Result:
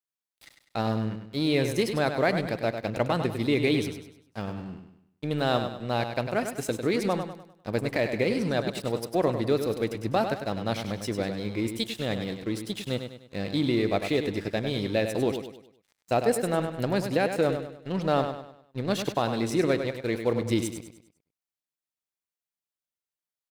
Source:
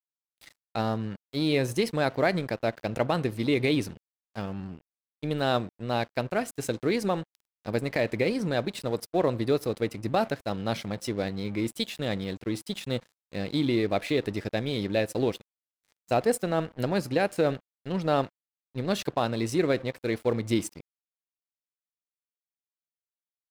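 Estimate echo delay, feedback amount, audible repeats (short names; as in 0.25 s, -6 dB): 0.1 s, 40%, 4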